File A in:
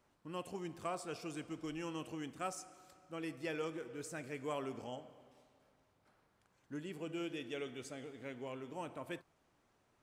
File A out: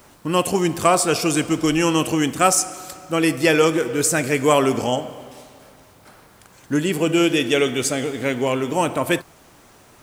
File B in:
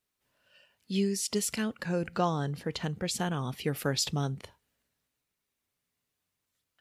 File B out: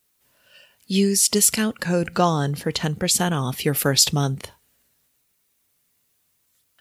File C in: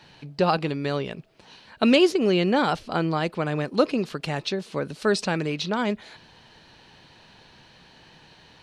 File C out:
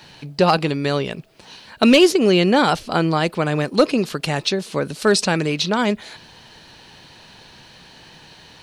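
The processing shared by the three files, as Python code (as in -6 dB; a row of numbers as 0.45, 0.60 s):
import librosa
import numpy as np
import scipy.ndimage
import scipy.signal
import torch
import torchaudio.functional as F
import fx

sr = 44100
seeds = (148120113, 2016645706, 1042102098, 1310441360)

p1 = fx.high_shelf(x, sr, hz=6600.0, db=11.0)
p2 = 10.0 ** (-12.5 / 20.0) * (np.abs((p1 / 10.0 ** (-12.5 / 20.0) + 3.0) % 4.0 - 2.0) - 1.0)
p3 = p1 + F.gain(torch.from_numpy(p2), -7.5).numpy()
y = p3 * 10.0 ** (-2 / 20.0) / np.max(np.abs(p3))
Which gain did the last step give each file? +21.0, +6.0, +3.0 dB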